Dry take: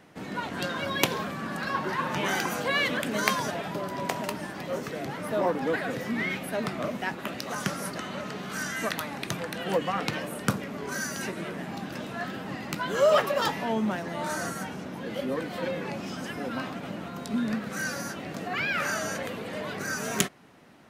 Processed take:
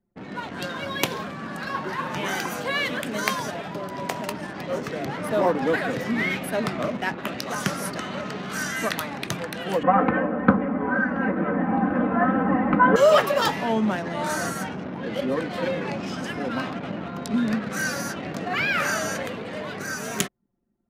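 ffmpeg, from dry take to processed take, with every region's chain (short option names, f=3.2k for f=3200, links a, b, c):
-filter_complex "[0:a]asettb=1/sr,asplit=3[a][b][c];[a]atrim=end=9.834[d];[b]atrim=start=9.83:end=12.96,asetpts=PTS-STARTPTS,afade=t=in:d=0.004:c=qsin,afade=t=out:st=3.126:d=0.004:c=qsin,lowpass=f=1.6k:w=0.5412,lowpass=f=1.6k:w=1.3066,acontrast=78,aecho=1:1:3.9:0.97,atrim=end_sample=138033[e];[c]atrim=start=12.956[f];[d][e]acrossfade=d=0.004:c1=hsin:c2=qsin[g];[g][f]acrossfade=d=0.004:c1=qsin:c2=hsin,anlmdn=0.251,dynaudnorm=f=200:g=11:m=5dB"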